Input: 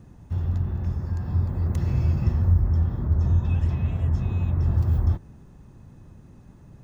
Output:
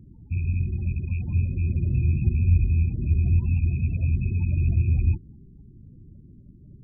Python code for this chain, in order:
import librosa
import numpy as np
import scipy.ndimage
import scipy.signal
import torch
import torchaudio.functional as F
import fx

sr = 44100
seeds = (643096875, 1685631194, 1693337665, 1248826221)

y = fx.rattle_buzz(x, sr, strikes_db=-24.0, level_db=-24.0)
y = fx.spec_topn(y, sr, count=16)